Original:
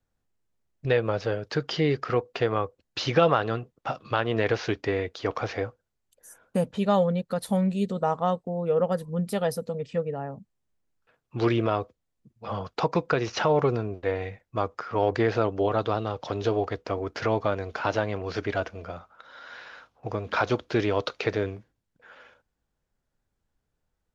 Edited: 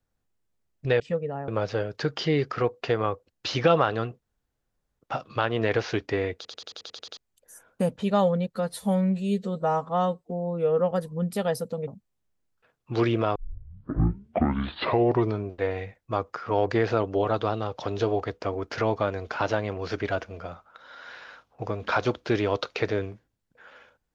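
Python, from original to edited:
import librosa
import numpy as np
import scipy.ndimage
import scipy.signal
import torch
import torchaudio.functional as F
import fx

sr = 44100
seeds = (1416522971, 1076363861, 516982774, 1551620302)

y = fx.edit(x, sr, fx.insert_room_tone(at_s=3.74, length_s=0.77),
    fx.stutter_over(start_s=5.11, slice_s=0.09, count=9),
    fx.stretch_span(start_s=7.31, length_s=1.57, factor=1.5),
    fx.move(start_s=9.84, length_s=0.48, to_s=1.0),
    fx.tape_start(start_s=11.8, length_s=2.13), tone=tone)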